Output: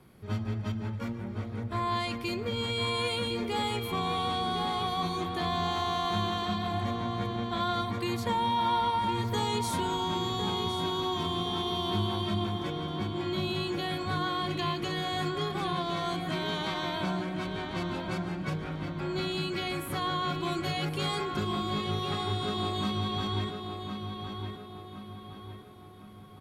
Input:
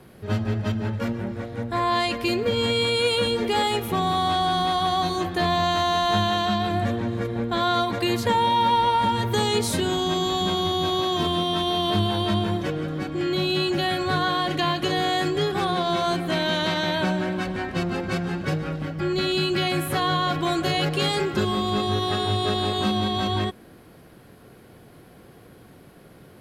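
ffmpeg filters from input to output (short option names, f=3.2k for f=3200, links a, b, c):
-filter_complex "[0:a]aecho=1:1:0.9:0.31,asplit=2[a][b];[b]adelay=1061,lowpass=f=3.4k:p=1,volume=-6dB,asplit=2[c][d];[d]adelay=1061,lowpass=f=3.4k:p=1,volume=0.47,asplit=2[e][f];[f]adelay=1061,lowpass=f=3.4k:p=1,volume=0.47,asplit=2[g][h];[h]adelay=1061,lowpass=f=3.4k:p=1,volume=0.47,asplit=2[i][j];[j]adelay=1061,lowpass=f=3.4k:p=1,volume=0.47,asplit=2[k][l];[l]adelay=1061,lowpass=f=3.4k:p=1,volume=0.47[m];[c][e][g][i][k][m]amix=inputs=6:normalize=0[n];[a][n]amix=inputs=2:normalize=0,volume=-9dB"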